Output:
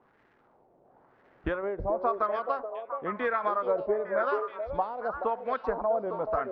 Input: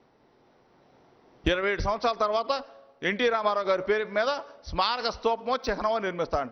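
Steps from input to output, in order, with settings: crackle 580/s -46 dBFS; LFO low-pass sine 0.96 Hz 640–1800 Hz; delay with a stepping band-pass 0.428 s, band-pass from 480 Hz, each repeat 1.4 oct, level -3 dB; gain -6.5 dB

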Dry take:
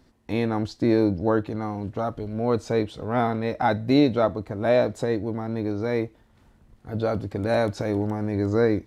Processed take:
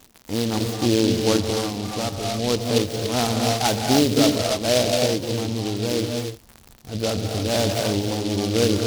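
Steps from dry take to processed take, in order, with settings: non-linear reverb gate 0.32 s rising, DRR 1 dB; crackle 160/s -31 dBFS; noise-modulated delay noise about 3900 Hz, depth 0.13 ms

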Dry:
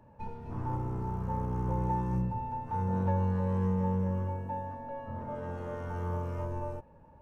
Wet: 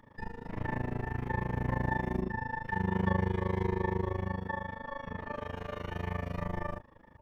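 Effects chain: dynamic EQ 140 Hz, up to -5 dB, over -51 dBFS, Q 3.6; harmoniser +12 st -2 dB; AM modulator 26 Hz, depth 90%; gain +1.5 dB

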